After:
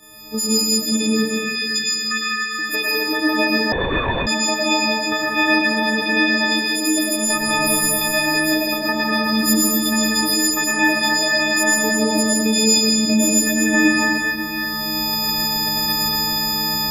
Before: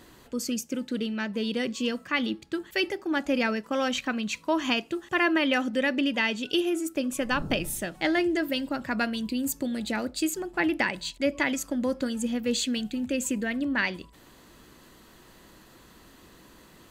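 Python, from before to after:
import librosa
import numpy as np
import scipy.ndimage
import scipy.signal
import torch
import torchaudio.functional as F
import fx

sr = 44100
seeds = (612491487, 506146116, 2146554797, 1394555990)

p1 = fx.freq_snap(x, sr, grid_st=6)
p2 = fx.recorder_agc(p1, sr, target_db=-13.0, rise_db_per_s=23.0, max_gain_db=30)
p3 = fx.cheby1_highpass(p2, sr, hz=1200.0, order=8, at=(1.13, 2.59))
p4 = fx.level_steps(p3, sr, step_db=22)
p5 = p3 + (p4 * librosa.db_to_amplitude(-1.0))
p6 = fx.rev_plate(p5, sr, seeds[0], rt60_s=3.6, hf_ratio=0.6, predelay_ms=90, drr_db=-6.5)
p7 = fx.lpc_vocoder(p6, sr, seeds[1], excitation='whisper', order=10, at=(3.72, 4.27))
y = p7 * librosa.db_to_amplitude(-6.5)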